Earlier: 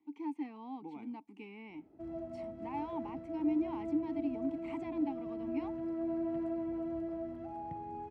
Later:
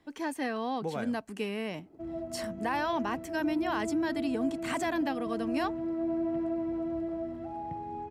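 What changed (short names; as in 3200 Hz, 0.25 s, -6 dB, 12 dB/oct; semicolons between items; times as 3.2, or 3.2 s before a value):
speech: remove vowel filter u; background +4.5 dB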